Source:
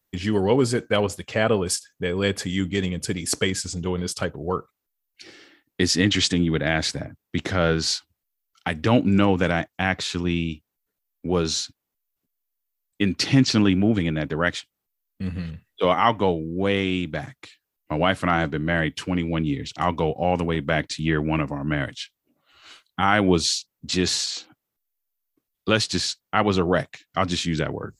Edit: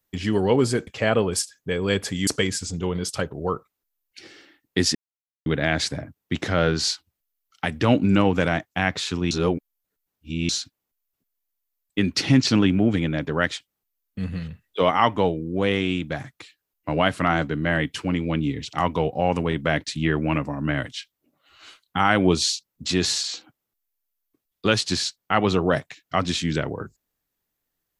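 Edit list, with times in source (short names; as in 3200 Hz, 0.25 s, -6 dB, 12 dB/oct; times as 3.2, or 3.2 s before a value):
0.87–1.21 cut
2.61–3.3 cut
5.98–6.49 mute
10.34–11.52 reverse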